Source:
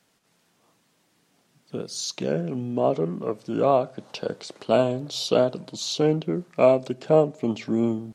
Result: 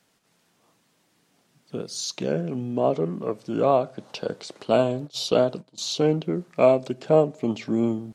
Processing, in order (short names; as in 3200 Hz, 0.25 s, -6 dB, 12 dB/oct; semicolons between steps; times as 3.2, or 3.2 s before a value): 4.74–5.78 gate -32 dBFS, range -18 dB